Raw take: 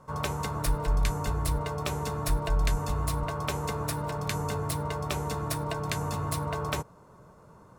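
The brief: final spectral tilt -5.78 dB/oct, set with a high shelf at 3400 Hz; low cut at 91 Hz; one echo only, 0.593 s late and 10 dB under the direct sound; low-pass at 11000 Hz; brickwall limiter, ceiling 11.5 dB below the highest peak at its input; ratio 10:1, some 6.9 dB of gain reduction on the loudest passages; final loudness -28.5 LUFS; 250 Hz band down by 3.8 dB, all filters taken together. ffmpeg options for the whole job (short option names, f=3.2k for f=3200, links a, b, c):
-af "highpass=91,lowpass=11k,equalizer=f=250:t=o:g=-7,highshelf=f=3.4k:g=-4.5,acompressor=threshold=-36dB:ratio=10,alimiter=level_in=10.5dB:limit=-24dB:level=0:latency=1,volume=-10.5dB,aecho=1:1:593:0.316,volume=14.5dB"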